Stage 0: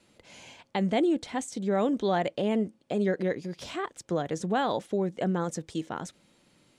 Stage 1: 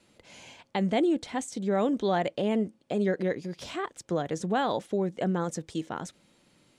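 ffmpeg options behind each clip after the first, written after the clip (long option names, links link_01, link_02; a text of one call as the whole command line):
ffmpeg -i in.wav -af anull out.wav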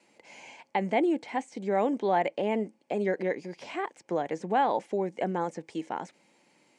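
ffmpeg -i in.wav -filter_complex "[0:a]acrossover=split=3700[link_01][link_02];[link_02]acompressor=threshold=-54dB:ratio=4:attack=1:release=60[link_03];[link_01][link_03]amix=inputs=2:normalize=0,highpass=250,equalizer=frequency=860:width_type=q:width=4:gain=7,equalizer=frequency=1300:width_type=q:width=4:gain=-6,equalizer=frequency=2200:width_type=q:width=4:gain=6,equalizer=frequency=3600:width_type=q:width=4:gain=-8,lowpass=frequency=9600:width=0.5412,lowpass=frequency=9600:width=1.3066" out.wav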